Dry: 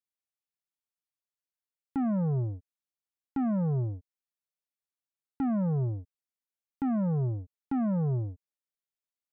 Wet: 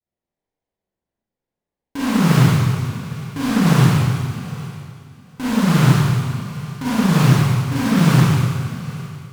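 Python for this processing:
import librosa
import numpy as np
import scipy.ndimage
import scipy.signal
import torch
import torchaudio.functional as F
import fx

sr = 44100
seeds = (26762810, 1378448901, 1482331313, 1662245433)

p1 = fx.highpass(x, sr, hz=59.0, slope=6)
p2 = fx.low_shelf(p1, sr, hz=220.0, db=11.0)
p3 = fx.level_steps(p2, sr, step_db=21)
p4 = p2 + (p3 * librosa.db_to_amplitude(0.5))
p5 = fx.sample_hold(p4, sr, seeds[0], rate_hz=1300.0, jitter_pct=20)
p6 = fx.vibrato(p5, sr, rate_hz=0.68, depth_cents=70.0)
p7 = p6 + fx.echo_feedback(p6, sr, ms=812, feedback_pct=17, wet_db=-18.0, dry=0)
p8 = fx.rev_schroeder(p7, sr, rt60_s=1.9, comb_ms=32, drr_db=-9.5)
p9 = fx.doppler_dist(p8, sr, depth_ms=0.52)
y = p9 * librosa.db_to_amplitude(-4.5)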